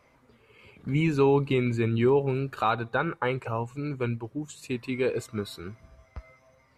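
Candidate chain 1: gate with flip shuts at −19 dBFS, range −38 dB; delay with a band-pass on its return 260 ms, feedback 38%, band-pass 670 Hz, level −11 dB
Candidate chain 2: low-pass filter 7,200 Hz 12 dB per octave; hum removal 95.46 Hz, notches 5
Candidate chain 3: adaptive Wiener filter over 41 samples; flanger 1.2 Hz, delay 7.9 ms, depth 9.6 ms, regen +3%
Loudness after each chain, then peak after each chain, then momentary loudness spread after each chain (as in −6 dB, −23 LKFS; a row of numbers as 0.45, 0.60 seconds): −38.5, −27.5, −31.5 LKFS; −14.5, −12.0, −14.5 dBFS; 19, 14, 21 LU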